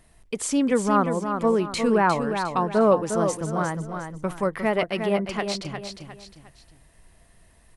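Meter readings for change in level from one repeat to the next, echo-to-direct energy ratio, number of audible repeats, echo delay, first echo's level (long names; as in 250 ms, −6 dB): −8.5 dB, −6.5 dB, 3, 356 ms, −7.0 dB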